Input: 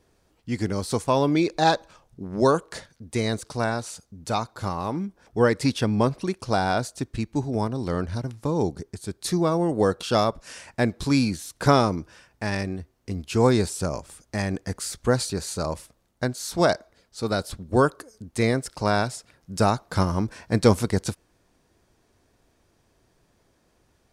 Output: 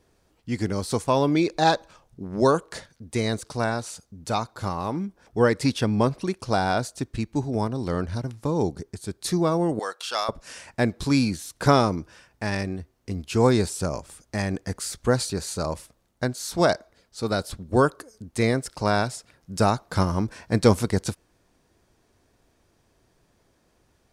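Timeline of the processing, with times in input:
9.79–10.29 HPF 1000 Hz

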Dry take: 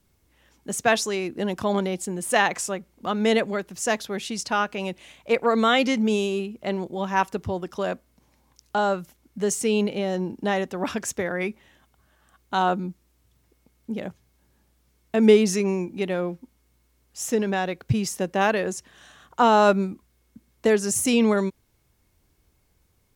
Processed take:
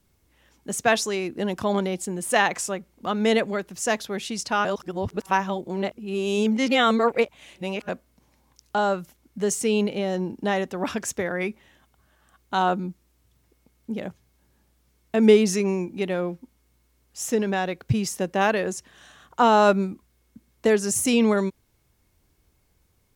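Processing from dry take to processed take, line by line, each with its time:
4.65–7.89 reverse

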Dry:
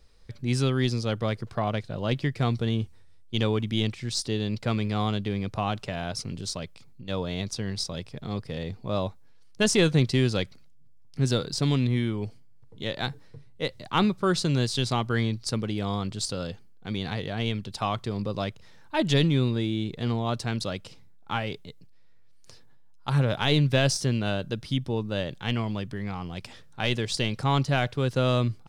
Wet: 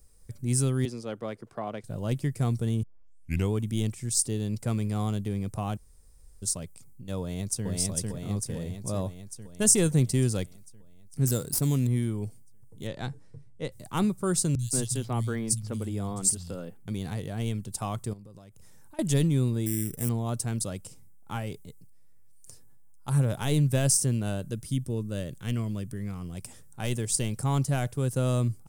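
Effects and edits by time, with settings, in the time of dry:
0.85–1.84 three-band isolator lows -19 dB, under 220 Hz, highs -18 dB, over 4400 Hz
2.83 tape start 0.69 s
5.77–6.42 room tone
7.2–7.66 echo throw 0.45 s, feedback 65%, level -0.5 dB
11.27–11.87 running maximum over 3 samples
12.87–13.72 LPF 5300 Hz
14.55–16.88 three bands offset in time lows, highs, mids 40/180 ms, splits 150/3400 Hz
18.13–18.99 compressor 12:1, threshold -42 dBFS
19.66–20.09 careless resampling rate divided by 8×, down none, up hold
24.51–26.35 bell 830 Hz -11.5 dB 0.39 oct
whole clip: EQ curve 120 Hz 0 dB, 4100 Hz -12 dB, 8600 Hz +14 dB

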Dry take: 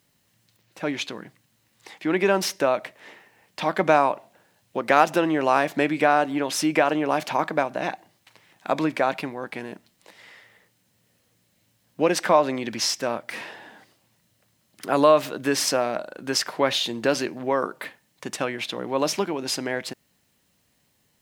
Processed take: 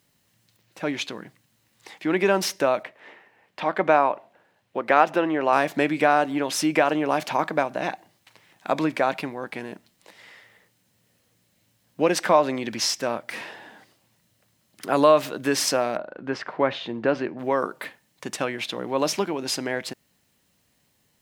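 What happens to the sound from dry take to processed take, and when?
2.83–5.53 tone controls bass -6 dB, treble -13 dB
15.97–17.39 LPF 2000 Hz

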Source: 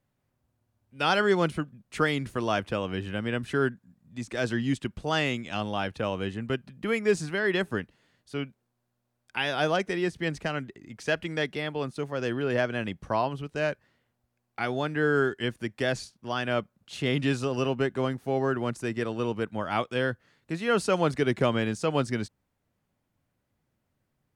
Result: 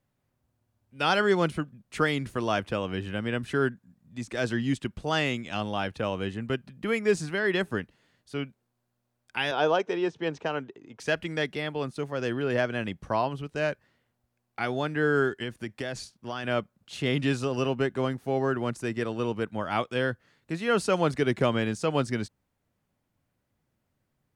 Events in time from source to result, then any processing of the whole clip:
9.51–11 speaker cabinet 170–5900 Hz, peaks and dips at 200 Hz -8 dB, 450 Hz +6 dB, 920 Hz +7 dB, 2000 Hz -8 dB, 4600 Hz -8 dB
15.42–16.44 compressor, threshold -28 dBFS

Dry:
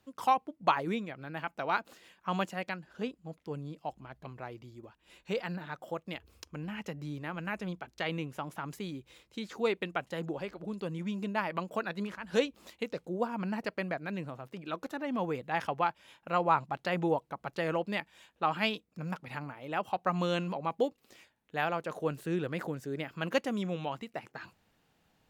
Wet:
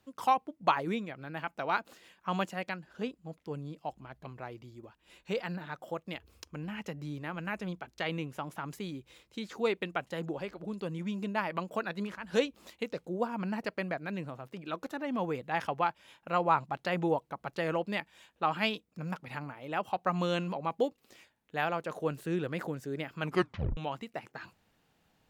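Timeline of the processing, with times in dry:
23.21 tape stop 0.56 s

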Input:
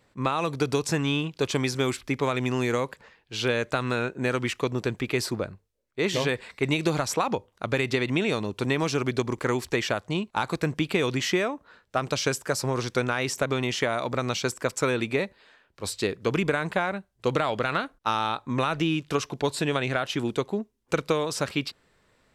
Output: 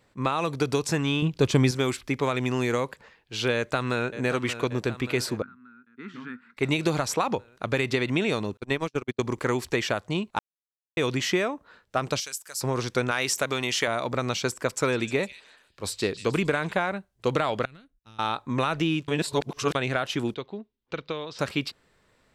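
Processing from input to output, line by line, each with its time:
1.22–1.71 low shelf 270 Hz +11.5 dB
3.54–4.1 echo throw 0.58 s, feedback 65%, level -11.5 dB
5.42–6.57 double band-pass 580 Hz, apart 2.5 oct
8.57–9.23 gate -25 dBFS, range -49 dB
10.39–10.97 mute
12.2–12.61 pre-emphasis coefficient 0.97
13.11–13.88 tilt +2 dB/oct
14.69–16.73 delay with a stepping band-pass 0.153 s, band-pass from 3600 Hz, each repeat 0.7 oct, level -9 dB
17.65–18.19 passive tone stack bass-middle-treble 10-0-1
19.08–19.75 reverse
20.34–21.39 ladder low-pass 4600 Hz, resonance 40%

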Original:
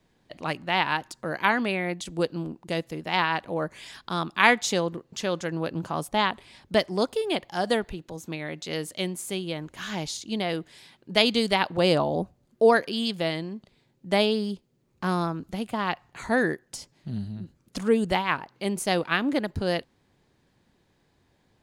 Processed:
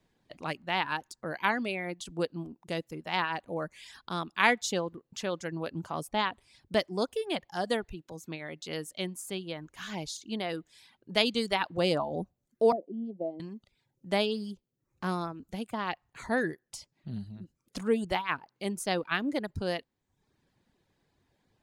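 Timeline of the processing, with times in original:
12.72–13.4 elliptic band-pass 190–710 Hz
whole clip: reverb removal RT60 0.63 s; gain -5 dB

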